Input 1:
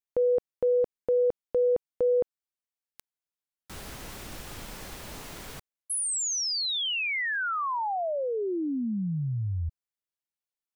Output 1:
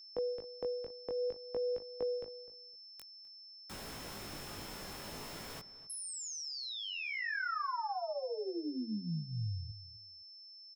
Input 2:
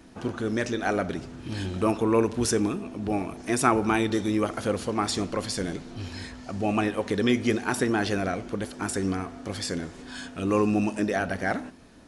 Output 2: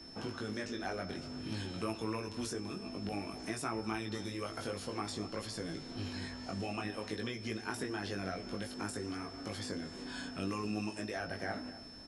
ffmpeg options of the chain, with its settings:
-filter_complex "[0:a]acrossover=split=110|1500[a][b][c];[a]acompressor=threshold=-55dB:ratio=2.5[d];[b]acompressor=threshold=-36dB:ratio=4[e];[c]acompressor=threshold=-45dB:ratio=2.5[f];[d][e][f]amix=inputs=3:normalize=0,flanger=delay=18:depth=3.2:speed=0.54,aeval=exprs='val(0)+0.00282*sin(2*PI*5300*n/s)':c=same,asplit=2[g][h];[h]adelay=255,lowpass=f=1.7k:p=1,volume=-14.5dB,asplit=2[i][j];[j]adelay=255,lowpass=f=1.7k:p=1,volume=0.19[k];[i][k]amix=inputs=2:normalize=0[l];[g][l]amix=inputs=2:normalize=0"

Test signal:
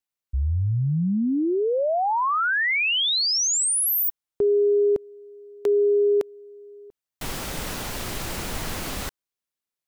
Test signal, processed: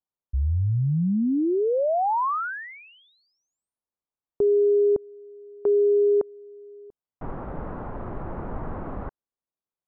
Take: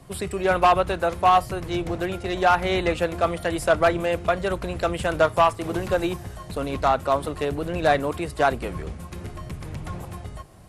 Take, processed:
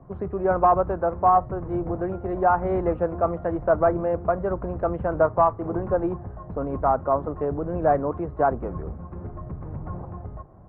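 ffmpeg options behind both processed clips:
-af "lowpass=f=1.2k:w=0.5412,lowpass=f=1.2k:w=1.3066"

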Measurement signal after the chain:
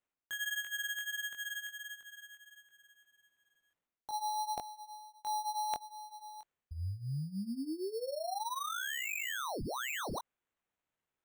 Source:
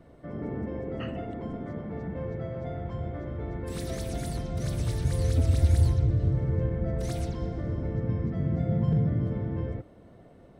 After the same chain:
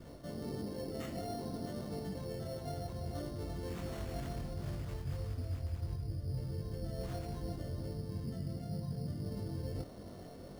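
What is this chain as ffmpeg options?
-af "adynamicequalizer=threshold=0.00562:dfrequency=730:dqfactor=4.9:tfrequency=730:tqfactor=4.9:attack=5:release=100:ratio=0.375:range=2.5:mode=boostabove:tftype=bell,areverse,acompressor=threshold=-41dB:ratio=6,areverse,flanger=delay=20:depth=2.6:speed=1.5,acrusher=samples=9:mix=1:aa=0.000001,volume=6dB"

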